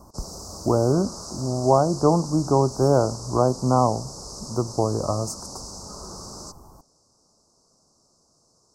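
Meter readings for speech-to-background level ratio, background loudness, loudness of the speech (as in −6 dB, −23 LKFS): 14.5 dB, −37.0 LKFS, −22.5 LKFS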